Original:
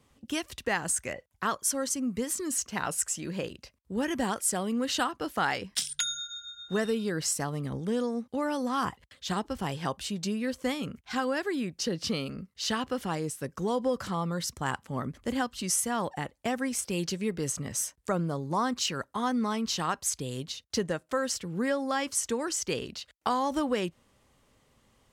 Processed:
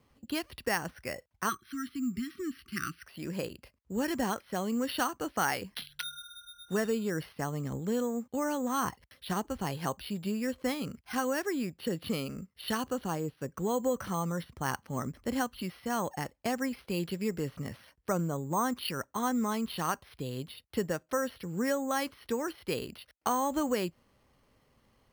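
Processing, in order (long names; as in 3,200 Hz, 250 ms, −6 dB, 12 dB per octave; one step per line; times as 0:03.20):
0:01.49–0:03.04: time-frequency box erased 390–1,100 Hz
0:12.77–0:13.50: dynamic equaliser 2,100 Hz, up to −6 dB, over −55 dBFS, Q 2.2
bad sample-rate conversion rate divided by 6×, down filtered, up hold
level −1.5 dB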